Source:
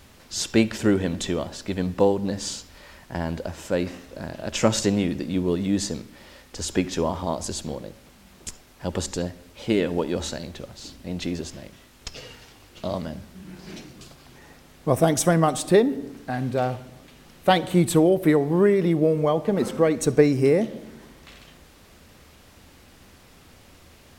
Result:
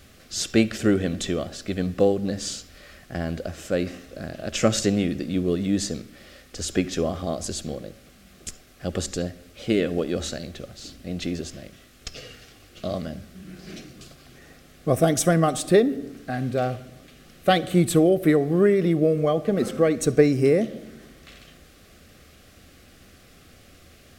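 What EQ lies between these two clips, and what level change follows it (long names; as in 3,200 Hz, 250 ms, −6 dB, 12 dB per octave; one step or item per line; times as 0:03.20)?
Butterworth band-reject 930 Hz, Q 3.1
0.0 dB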